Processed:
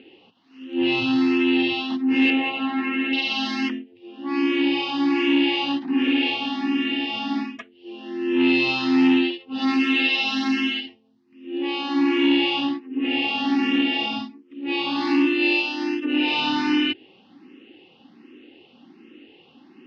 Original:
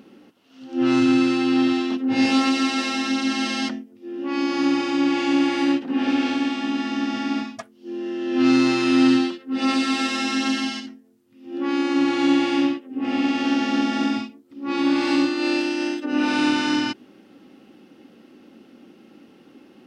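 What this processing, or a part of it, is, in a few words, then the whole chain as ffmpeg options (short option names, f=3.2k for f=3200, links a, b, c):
barber-pole phaser into a guitar amplifier: -filter_complex "[0:a]asettb=1/sr,asplit=3[a][b][c];[a]atrim=end=2.304[d];[b]atrim=start=2.3:end=3.13,asetpts=PTS-STARTPTS,afade=t=in:d=0.004:c=qsin,afade=t=out:st=0.826:d=0.004:c=qsin,lowpass=f=2.4k:w=0.5412,lowpass=f=2.4k:w=1.3066[e];[c]atrim=start=3.126[f];[d][e]acrossfade=d=0.004:c1=hsin:c2=qsin[g];[g][f]acrossfade=d=0.004:c1=qsin:c2=hsin,asplit=2[h][i];[i]afreqshift=1.3[j];[h][j]amix=inputs=2:normalize=1,asoftclip=type=tanh:threshold=-15dB,highpass=92,equalizer=f=130:t=q:w=4:g=-6,equalizer=f=200:t=q:w=4:g=-7,equalizer=f=590:t=q:w=4:g=-10,equalizer=f=1.4k:t=q:w=4:g=-9,equalizer=f=2.8k:t=q:w=4:g=8,lowpass=f=4.3k:w=0.5412,lowpass=f=4.3k:w=1.3066,volume=4.5dB"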